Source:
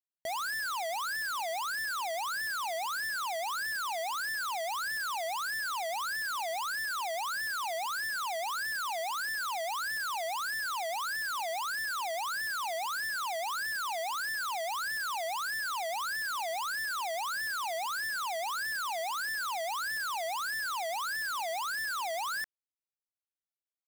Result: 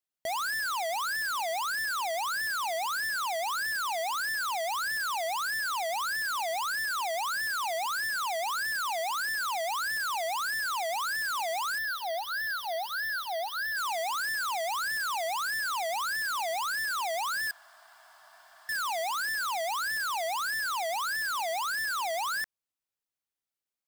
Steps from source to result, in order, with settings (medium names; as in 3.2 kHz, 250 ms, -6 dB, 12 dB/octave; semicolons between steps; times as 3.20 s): 11.78–13.77 s: static phaser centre 1.6 kHz, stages 8; 17.51–18.69 s: room tone; trim +3 dB